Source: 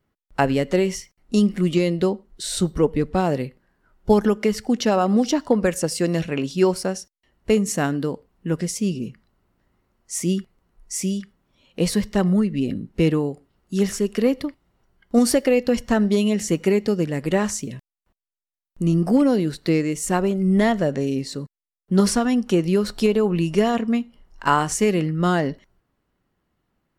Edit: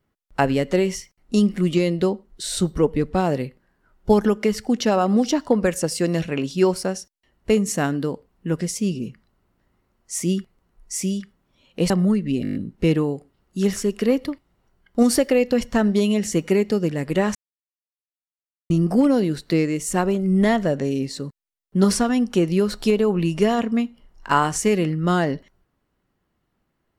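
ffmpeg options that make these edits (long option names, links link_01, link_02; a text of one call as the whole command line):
ffmpeg -i in.wav -filter_complex "[0:a]asplit=10[link_01][link_02][link_03][link_04][link_05][link_06][link_07][link_08][link_09][link_10];[link_01]atrim=end=11.902[link_11];[link_02]atrim=start=12.178:end=12.732[link_12];[link_03]atrim=start=12.708:end=12.732[link_13];[link_04]atrim=start=12.708:end=12.732[link_14];[link_05]atrim=start=12.708:end=12.732[link_15];[link_06]atrim=start=12.708:end=12.732[link_16];[link_07]atrim=start=12.708:end=12.732[link_17];[link_08]atrim=start=12.708:end=17.51,asetpts=PTS-STARTPTS,afade=type=out:start_time=4.798:duration=0.004:curve=hsin[link_18];[link_09]atrim=start=17.51:end=18.86,asetpts=PTS-STARTPTS,volume=0[link_19];[link_10]atrim=start=18.86,asetpts=PTS-STARTPTS,afade=type=in:duration=0.004:curve=hsin[link_20];[link_11][link_12]acrossfade=duration=0.004:curve1=hsin:curve2=hsin[link_21];[link_21][link_13]acrossfade=duration=0.004:curve1=hsin:curve2=hsin[link_22];[link_22][link_14]acrossfade=duration=0.004:curve1=hsin:curve2=hsin[link_23];[link_23][link_15]acrossfade=duration=0.004:curve1=hsin:curve2=hsin[link_24];[link_24][link_16]acrossfade=duration=0.004:curve1=hsin:curve2=hsin[link_25];[link_25][link_17]acrossfade=duration=0.004:curve1=hsin:curve2=hsin[link_26];[link_18][link_19][link_20]concat=n=3:v=0:a=1[link_27];[link_26][link_27]acrossfade=duration=0.004:curve1=hsin:curve2=hsin" out.wav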